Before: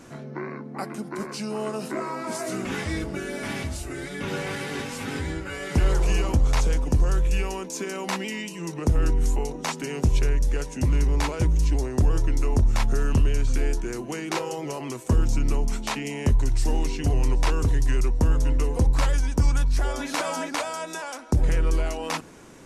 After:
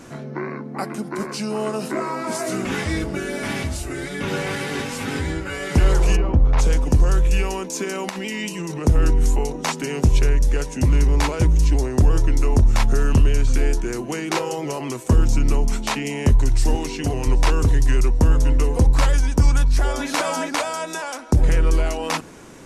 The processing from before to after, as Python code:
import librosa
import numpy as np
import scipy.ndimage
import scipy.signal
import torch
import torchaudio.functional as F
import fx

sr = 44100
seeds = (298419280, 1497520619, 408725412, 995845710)

y = fx.spacing_loss(x, sr, db_at_10k=39, at=(6.15, 6.58), fade=0.02)
y = fx.over_compress(y, sr, threshold_db=-33.0, ratio=-1.0, at=(8.09, 8.86))
y = fx.highpass(y, sr, hz=150.0, slope=6, at=(16.75, 17.27))
y = y * 10.0 ** (5.0 / 20.0)